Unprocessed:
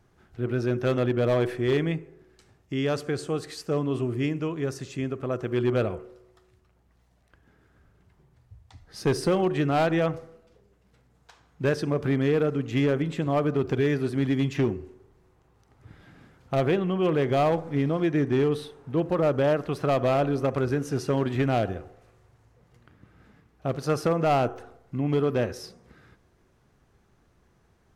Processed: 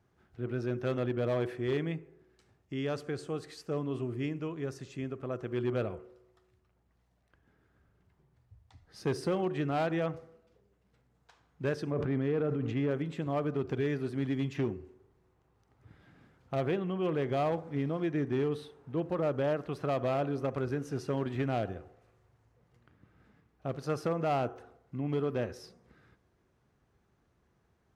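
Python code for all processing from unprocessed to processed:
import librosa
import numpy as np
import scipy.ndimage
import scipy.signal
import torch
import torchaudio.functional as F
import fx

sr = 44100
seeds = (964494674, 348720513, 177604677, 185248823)

y = fx.chain(x, sr, fx.lowpass(hz=1900.0, slope=6),
    fx.sustainer(db_per_s=22.0), at=(11.91, 12.91))
y = scipy.signal.sosfilt(scipy.signal.butter(2, 46.0, 'highpass', fs=sr, output='sos'), y)
y = fx.high_shelf(y, sr, hz=5400.0, db=-5.0)
y = y * librosa.db_to_amplitude(-7.5)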